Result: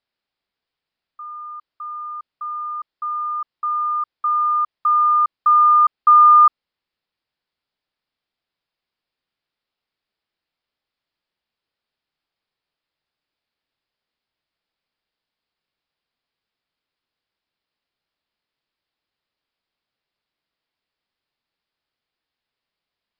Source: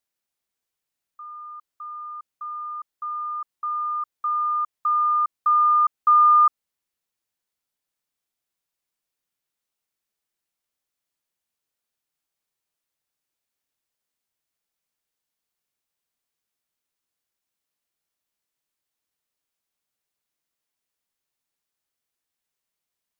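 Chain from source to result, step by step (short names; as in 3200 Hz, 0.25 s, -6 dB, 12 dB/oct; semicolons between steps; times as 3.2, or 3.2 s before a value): downsampling 11025 Hz; gain +5 dB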